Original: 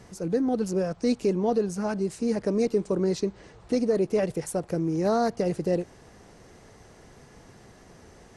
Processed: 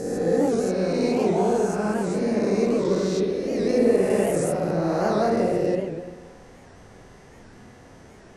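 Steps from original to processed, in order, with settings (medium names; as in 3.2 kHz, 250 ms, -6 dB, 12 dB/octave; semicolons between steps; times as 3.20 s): reverse spectral sustain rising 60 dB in 2.13 s; spring tank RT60 1.3 s, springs 48/52 ms, chirp 80 ms, DRR -1.5 dB; warped record 78 rpm, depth 160 cents; trim -3.5 dB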